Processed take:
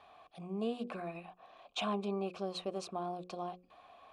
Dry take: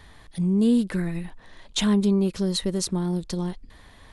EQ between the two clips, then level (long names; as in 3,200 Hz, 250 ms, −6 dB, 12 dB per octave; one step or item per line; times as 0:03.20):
formant filter a
mains-hum notches 60/120/180/240/300/360/420/480/540 Hz
+7.0 dB